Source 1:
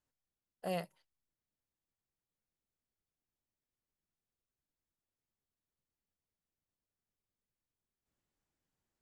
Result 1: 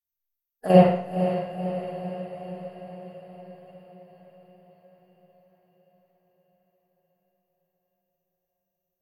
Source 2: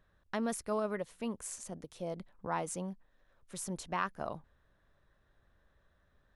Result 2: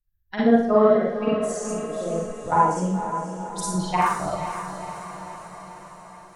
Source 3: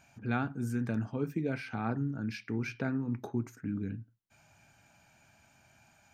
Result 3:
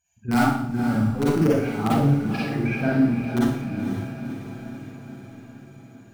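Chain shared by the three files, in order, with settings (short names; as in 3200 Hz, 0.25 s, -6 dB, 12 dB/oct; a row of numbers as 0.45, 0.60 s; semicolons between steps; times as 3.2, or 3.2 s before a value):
per-bin expansion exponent 2; treble ducked by the level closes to 1300 Hz, closed at -33.5 dBFS; in parallel at -5 dB: wrapped overs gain 25.5 dB; on the sum: level quantiser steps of 11 dB; on a send: diffused feedback echo 0.51 s, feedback 62%, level -9 dB; on the sum: Schroeder reverb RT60 0.65 s, DRR -6.5 dB; match loudness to -23 LUFS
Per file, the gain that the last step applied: +15.5, +12.0, +9.0 dB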